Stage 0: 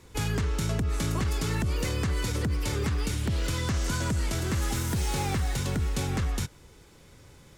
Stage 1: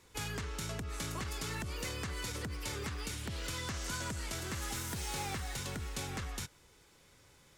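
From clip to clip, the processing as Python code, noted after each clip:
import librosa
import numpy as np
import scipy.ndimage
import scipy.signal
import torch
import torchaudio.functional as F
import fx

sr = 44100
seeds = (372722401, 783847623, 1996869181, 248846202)

y = fx.low_shelf(x, sr, hz=500.0, db=-9.0)
y = F.gain(torch.from_numpy(y), -5.0).numpy()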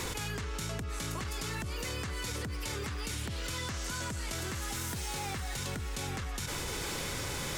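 y = fx.env_flatten(x, sr, amount_pct=100)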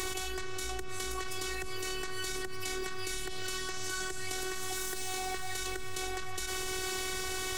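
y = fx.robotise(x, sr, hz=374.0)
y = F.gain(torch.from_numpy(y), 3.5).numpy()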